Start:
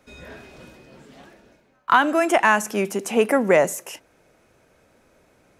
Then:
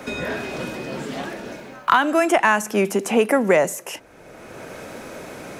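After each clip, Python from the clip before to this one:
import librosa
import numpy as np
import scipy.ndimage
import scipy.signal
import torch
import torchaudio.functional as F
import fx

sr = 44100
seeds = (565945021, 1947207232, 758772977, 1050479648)

y = fx.band_squash(x, sr, depth_pct=70)
y = F.gain(torch.from_numpy(y), 2.0).numpy()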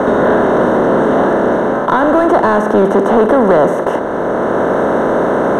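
y = fx.bin_compress(x, sr, power=0.4)
y = fx.leveller(y, sr, passes=3)
y = np.convolve(y, np.full(18, 1.0 / 18))[:len(y)]
y = F.gain(torch.from_numpy(y), -4.5).numpy()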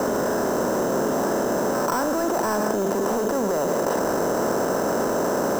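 y = fx.level_steps(x, sr, step_db=23)
y = fx.sample_hold(y, sr, seeds[0], rate_hz=6800.0, jitter_pct=0)
y = y + 10.0 ** (-11.5 / 20.0) * np.pad(y, (int(519 * sr / 1000.0), 0))[:len(y)]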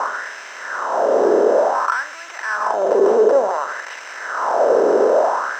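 y = fx.air_absorb(x, sr, metres=130.0)
y = fx.filter_lfo_highpass(y, sr, shape='sine', hz=0.56, low_hz=400.0, high_hz=2300.0, q=3.7)
y = F.gain(torch.from_numpy(y), 2.5).numpy()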